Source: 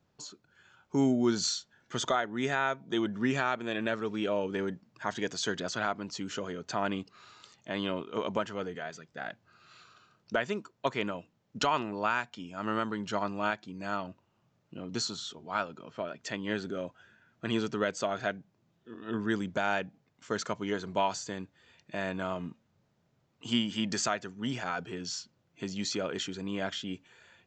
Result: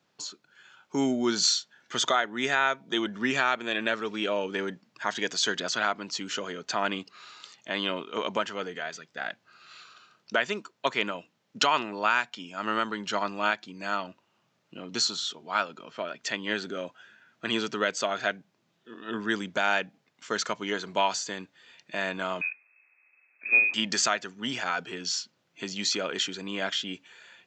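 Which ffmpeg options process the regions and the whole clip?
-filter_complex "[0:a]asettb=1/sr,asplit=3[a][b][c];[a]atrim=end=22.414[d];[b]atrim=start=22.41:end=23.74,asetpts=PTS-STARTPTS,afade=t=in:d=0.004:c=qsin,afade=t=out:st=1.326:d=0.004:c=qsin,lowpass=f=2.3k:t=q:w=0.5098,lowpass=f=2.3k:t=q:w=0.6013,lowpass=f=2.3k:t=q:w=0.9,lowpass=f=2.3k:t=q:w=2.563,afreqshift=-2700,highpass=f=230:w=0.5412,highpass=f=230:w=1.3066,lowshelf=f=490:g=8[e];[c]atrim=start=23.736[f];[d][e]acrossfade=d=0.004:c1=hsin:c2=qsin[g];[g][f]acrossfade=d=0.004:c1=qsin:c2=hsin,highpass=180,equalizer=f=3.4k:w=0.34:g=8.5"

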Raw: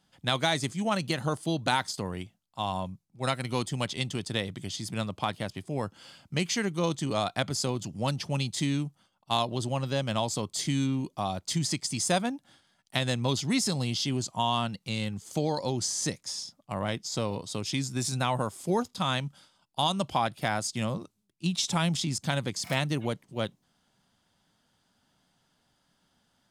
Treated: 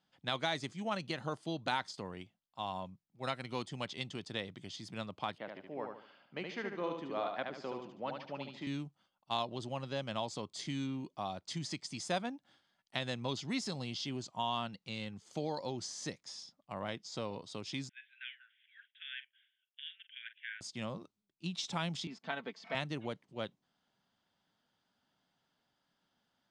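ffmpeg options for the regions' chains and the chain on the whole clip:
-filter_complex "[0:a]asettb=1/sr,asplit=3[a][b][c];[a]atrim=end=5.384[d];[b]atrim=start=5.38:end=8.67,asetpts=PTS-STARTPTS,afade=t=in:d=0.004:c=qsin,afade=t=out:st=3.286:d=0.004:c=qsin,highpass=270,lowpass=2.2k,aecho=1:1:73|146|219|292|365:0.596|0.22|0.0815|0.0302|0.0112,atrim=end_sample=145089[e];[c]atrim=start=8.666[f];[d][e]acrossfade=d=0.004:c1=hsin:c2=qsin[g];[g][f]acrossfade=d=0.004:c1=qsin:c2=hsin,asettb=1/sr,asplit=3[h][i][j];[h]atrim=end=17.894[k];[i]atrim=start=17.89:end=20.61,asetpts=PTS-STARTPTS,afade=t=in:d=0.004:c=qsin,afade=t=out:st=2.716:d=0.004:c=qsin,deesser=0.8,asuperpass=centerf=2300:order=20:qfactor=1.2,asplit=2[l][m];[m]adelay=44,volume=-13dB[n];[l][n]amix=inputs=2:normalize=0,atrim=end_sample=119952[o];[j]atrim=start=20.606[p];[k][o]acrossfade=d=0.004:c1=hsin:c2=qsin[q];[q][p]acrossfade=d=0.004:c1=qsin:c2=hsin,asettb=1/sr,asplit=3[r][s][t];[r]atrim=end=22.074[u];[s]atrim=start=22.07:end=22.75,asetpts=PTS-STARTPTS,afade=t=in:d=0.004:c=qsin,afade=t=out:st=0.676:d=0.004:c=qsin,highpass=280,lowpass=2.7k,aecho=1:1:4.5:0.61,atrim=end_sample=29988[v];[t]atrim=start=22.746[w];[u][v]acrossfade=d=0.004:c1=hsin:c2=qsin[x];[x][w]acrossfade=d=0.004:c1=qsin:c2=hsin,lowpass=4.9k,lowshelf=f=120:g=-11.5,volume=-7.5dB"

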